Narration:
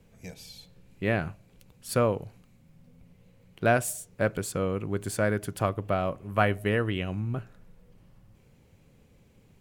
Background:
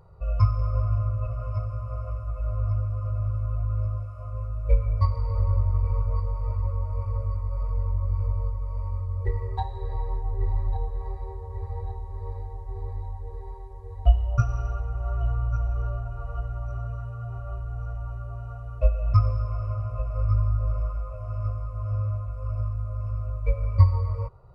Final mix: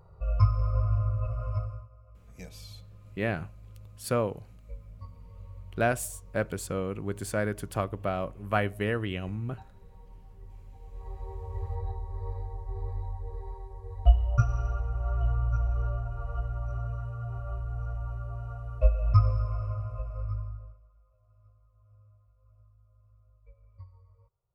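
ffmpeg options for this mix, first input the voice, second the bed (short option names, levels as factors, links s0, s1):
-filter_complex "[0:a]adelay=2150,volume=0.708[s0];[1:a]volume=8.91,afade=t=out:st=1.57:d=0.32:silence=0.0944061,afade=t=in:st=10.8:d=0.67:silence=0.0891251,afade=t=out:st=19.38:d=1.4:silence=0.0316228[s1];[s0][s1]amix=inputs=2:normalize=0"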